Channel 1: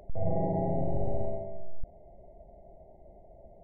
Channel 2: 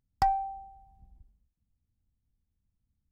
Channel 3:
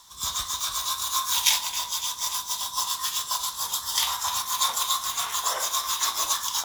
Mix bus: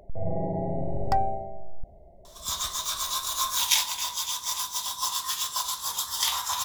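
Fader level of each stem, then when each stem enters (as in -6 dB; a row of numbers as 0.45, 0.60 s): 0.0, +0.5, -1.5 dB; 0.00, 0.90, 2.25 s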